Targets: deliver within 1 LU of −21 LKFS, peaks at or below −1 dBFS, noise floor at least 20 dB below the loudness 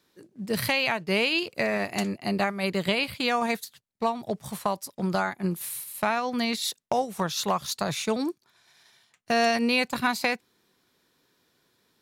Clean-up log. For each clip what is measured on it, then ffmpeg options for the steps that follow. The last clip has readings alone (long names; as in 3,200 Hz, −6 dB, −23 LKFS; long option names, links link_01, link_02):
integrated loudness −27.0 LKFS; sample peak −10.0 dBFS; target loudness −21.0 LKFS
→ -af "volume=6dB"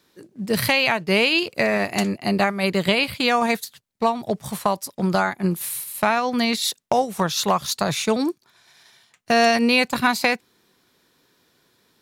integrated loudness −21.0 LKFS; sample peak −4.0 dBFS; background noise floor −64 dBFS